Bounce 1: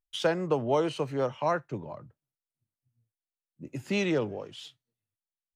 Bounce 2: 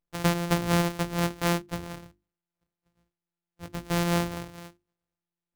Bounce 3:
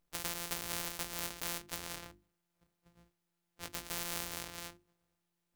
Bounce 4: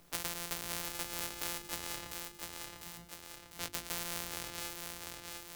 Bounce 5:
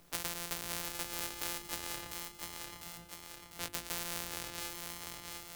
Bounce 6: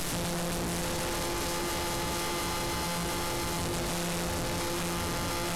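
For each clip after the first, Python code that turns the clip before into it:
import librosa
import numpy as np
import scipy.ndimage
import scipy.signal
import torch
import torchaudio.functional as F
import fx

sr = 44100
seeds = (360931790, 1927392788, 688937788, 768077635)

y1 = np.r_[np.sort(x[:len(x) // 256 * 256].reshape(-1, 256), axis=1).ravel(), x[len(x) // 256 * 256:]]
y1 = fx.hum_notches(y1, sr, base_hz=50, count=7)
y1 = y1 * librosa.db_to_amplitude(2.0)
y2 = fx.spectral_comp(y1, sr, ratio=4.0)
y2 = y2 * librosa.db_to_amplitude(-4.5)
y3 = fx.echo_feedback(y2, sr, ms=699, feedback_pct=30, wet_db=-9.0)
y3 = fx.band_squash(y3, sr, depth_pct=70)
y4 = y3 + 10.0 ** (-15.5 / 20.0) * np.pad(y3, (int(996 * sr / 1000.0), 0))[:len(y3)]
y5 = fx.delta_mod(y4, sr, bps=64000, step_db=-25.5)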